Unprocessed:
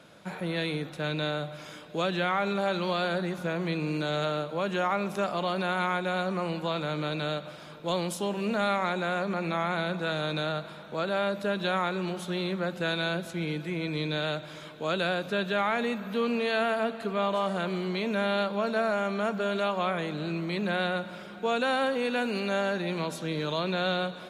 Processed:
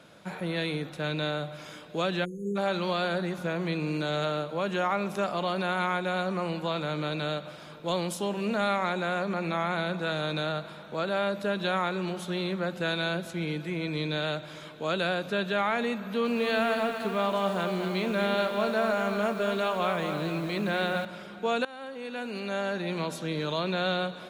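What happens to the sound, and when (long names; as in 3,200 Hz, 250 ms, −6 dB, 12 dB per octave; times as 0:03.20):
0:02.25–0:02.56: time-frequency box erased 530–6,300 Hz
0:16.01–0:21.05: feedback echo at a low word length 236 ms, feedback 55%, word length 8 bits, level −7 dB
0:21.65–0:23.00: fade in, from −21 dB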